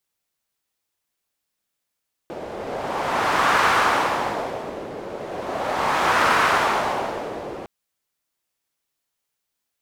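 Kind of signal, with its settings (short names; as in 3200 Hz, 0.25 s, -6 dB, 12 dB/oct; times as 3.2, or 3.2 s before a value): wind-like swept noise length 5.36 s, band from 480 Hz, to 1200 Hz, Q 1.6, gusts 2, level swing 15.5 dB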